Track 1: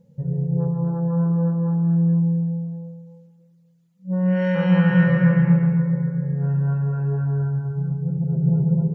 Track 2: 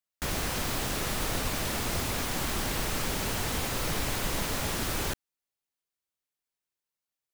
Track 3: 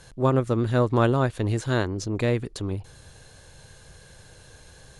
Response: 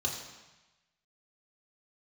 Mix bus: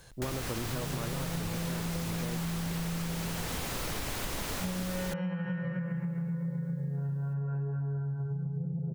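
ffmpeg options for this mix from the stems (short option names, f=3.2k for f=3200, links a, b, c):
-filter_complex "[0:a]adelay=550,volume=-1.5dB[a];[1:a]acompressor=mode=upward:threshold=-53dB:ratio=2.5,volume=-1dB[b];[2:a]volume=-5dB[c];[a][c]amix=inputs=2:normalize=0,acompressor=threshold=-26dB:ratio=6,volume=0dB[d];[b][d]amix=inputs=2:normalize=0,acompressor=threshold=-31dB:ratio=6"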